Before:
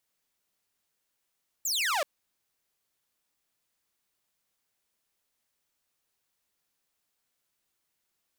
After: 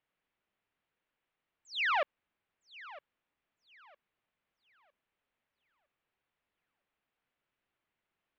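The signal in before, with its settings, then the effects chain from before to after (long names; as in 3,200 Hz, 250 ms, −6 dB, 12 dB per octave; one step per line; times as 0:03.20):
single falling chirp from 8,000 Hz, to 540 Hz, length 0.38 s saw, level −23 dB
low-pass filter 2,900 Hz 24 dB per octave
feedback echo with a high-pass in the loop 958 ms, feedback 29%, high-pass 200 Hz, level −18.5 dB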